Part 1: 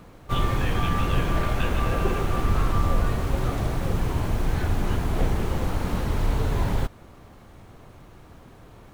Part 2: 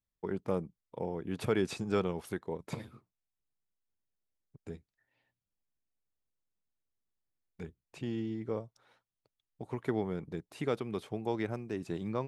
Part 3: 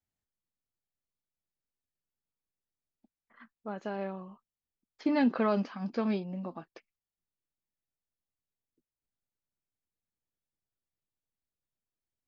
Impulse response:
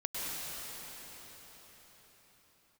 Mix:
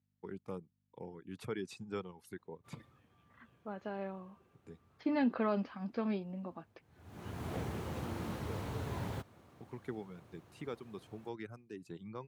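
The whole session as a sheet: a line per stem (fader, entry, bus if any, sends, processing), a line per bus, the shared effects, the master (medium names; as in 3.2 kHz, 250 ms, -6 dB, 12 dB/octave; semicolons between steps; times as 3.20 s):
6.90 s -22 dB -> 7.17 s -12 dB, 2.35 s, no send, auto duck -21 dB, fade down 1.30 s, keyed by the third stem
-8.5 dB, 0.00 s, no send, reverb removal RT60 1.2 s; peaking EQ 630 Hz -8.5 dB 0.36 oct; hum 50 Hz, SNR 28 dB
-5.0 dB, 0.00 s, no send, low-pass 4.2 kHz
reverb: none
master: high-pass 82 Hz 24 dB/octave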